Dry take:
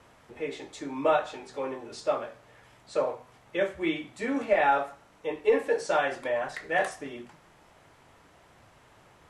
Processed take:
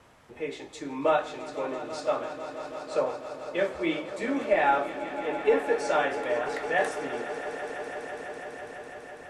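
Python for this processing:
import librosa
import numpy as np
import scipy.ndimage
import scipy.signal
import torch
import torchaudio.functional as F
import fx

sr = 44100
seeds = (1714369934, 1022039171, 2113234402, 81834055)

y = fx.echo_swell(x, sr, ms=166, loudest=5, wet_db=-15.0)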